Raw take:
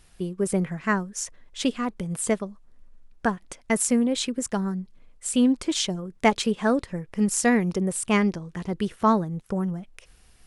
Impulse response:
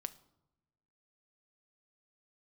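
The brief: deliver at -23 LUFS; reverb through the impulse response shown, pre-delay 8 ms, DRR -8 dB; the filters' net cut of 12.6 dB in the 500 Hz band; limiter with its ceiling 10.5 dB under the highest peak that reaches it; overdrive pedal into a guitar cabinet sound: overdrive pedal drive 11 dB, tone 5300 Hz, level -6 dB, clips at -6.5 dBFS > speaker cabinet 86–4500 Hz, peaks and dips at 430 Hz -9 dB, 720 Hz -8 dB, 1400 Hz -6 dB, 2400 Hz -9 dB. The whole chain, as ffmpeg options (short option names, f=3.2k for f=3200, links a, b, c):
-filter_complex "[0:a]equalizer=f=500:t=o:g=-8.5,alimiter=limit=-19dB:level=0:latency=1,asplit=2[a][b];[1:a]atrim=start_sample=2205,adelay=8[c];[b][c]afir=irnorm=-1:irlink=0,volume=10.5dB[d];[a][d]amix=inputs=2:normalize=0,asplit=2[e][f];[f]highpass=f=720:p=1,volume=11dB,asoftclip=type=tanh:threshold=-6.5dB[g];[e][g]amix=inputs=2:normalize=0,lowpass=f=5.3k:p=1,volume=-6dB,highpass=86,equalizer=f=430:t=q:w=4:g=-9,equalizer=f=720:t=q:w=4:g=-8,equalizer=f=1.4k:t=q:w=4:g=-6,equalizer=f=2.4k:t=q:w=4:g=-9,lowpass=f=4.5k:w=0.5412,lowpass=f=4.5k:w=1.3066,volume=0.5dB"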